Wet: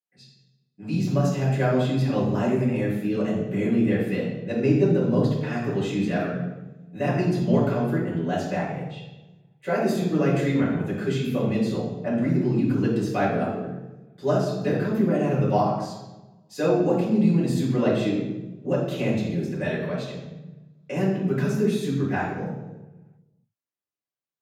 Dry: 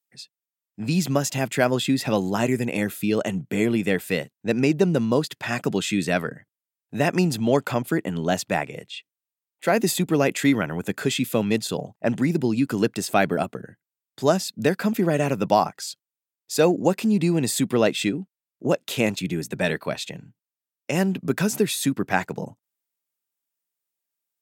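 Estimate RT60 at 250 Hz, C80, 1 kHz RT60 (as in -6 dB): 1.4 s, 4.5 dB, 0.95 s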